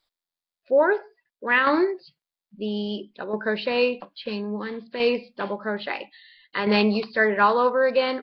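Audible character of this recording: tremolo saw down 0.6 Hz, depth 55%

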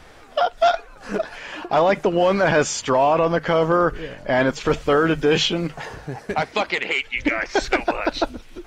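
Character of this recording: noise floor -45 dBFS; spectral tilt -4.5 dB/oct

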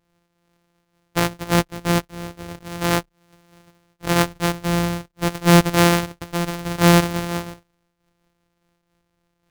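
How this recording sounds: a buzz of ramps at a fixed pitch in blocks of 256 samples; noise-modulated level

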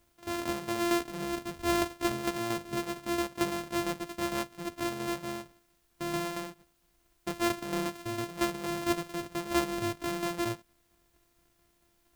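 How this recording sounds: a buzz of ramps at a fixed pitch in blocks of 128 samples; tremolo saw down 4.4 Hz, depth 55%; a quantiser's noise floor 12-bit, dither triangular

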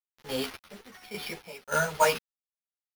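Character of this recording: a quantiser's noise floor 6-bit, dither none; random-step tremolo 3.5 Hz, depth 85%; aliases and images of a low sample rate 7700 Hz, jitter 0%; a shimmering, thickened sound

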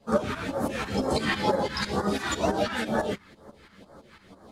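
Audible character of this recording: phasing stages 2, 2.1 Hz, lowest notch 530–2500 Hz; tremolo saw up 6 Hz, depth 80%; a shimmering, thickened sound

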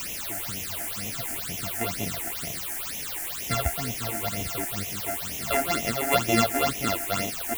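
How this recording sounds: a buzz of ramps at a fixed pitch in blocks of 64 samples; random-step tremolo, depth 55%; a quantiser's noise floor 6-bit, dither triangular; phasing stages 8, 2.1 Hz, lowest notch 140–1400 Hz

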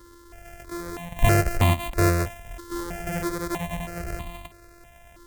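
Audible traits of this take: a buzz of ramps at a fixed pitch in blocks of 128 samples; notches that jump at a steady rate 3.1 Hz 690–1500 Hz

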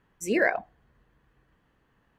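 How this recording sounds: noise floor -69 dBFS; spectral tilt -4.0 dB/oct

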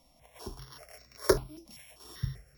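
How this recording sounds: a buzz of ramps at a fixed pitch in blocks of 8 samples; random-step tremolo; notches that jump at a steady rate 5.1 Hz 420–3200 Hz

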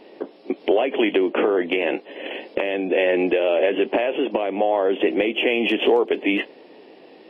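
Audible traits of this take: noise floor -48 dBFS; spectral tilt -2.0 dB/oct

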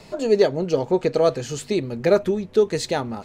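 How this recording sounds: noise floor -45 dBFS; spectral tilt -5.0 dB/oct

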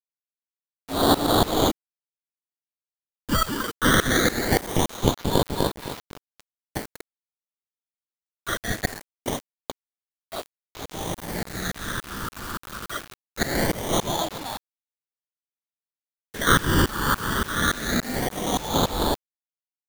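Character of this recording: tremolo saw up 3.5 Hz, depth 95%; aliases and images of a low sample rate 2600 Hz, jitter 0%; phasing stages 12, 0.22 Hz, lowest notch 680–2100 Hz; a quantiser's noise floor 8-bit, dither none

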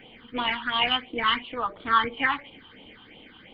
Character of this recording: phasing stages 6, 2.9 Hz, lowest notch 560–1700 Hz

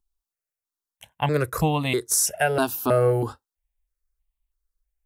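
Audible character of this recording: notches that jump at a steady rate 3.1 Hz 540–1500 Hz

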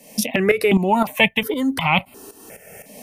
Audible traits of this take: tremolo saw up 3.9 Hz, depth 75%; notches that jump at a steady rate 2.8 Hz 370–1700 Hz

